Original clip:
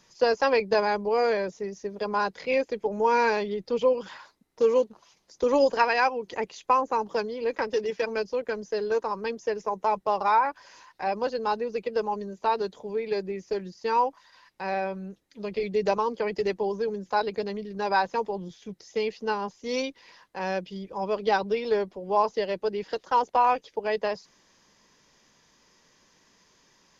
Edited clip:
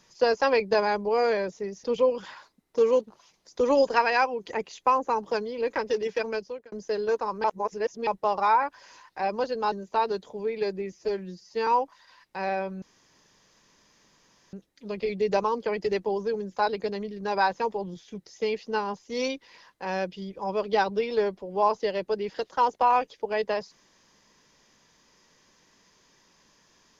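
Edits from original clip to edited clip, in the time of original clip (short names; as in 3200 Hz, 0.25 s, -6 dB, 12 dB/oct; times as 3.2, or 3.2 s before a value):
1.84–3.67 cut
8.09–8.55 fade out
9.27–9.9 reverse
11.55–12.22 cut
13.42–13.92 stretch 1.5×
15.07 insert room tone 1.71 s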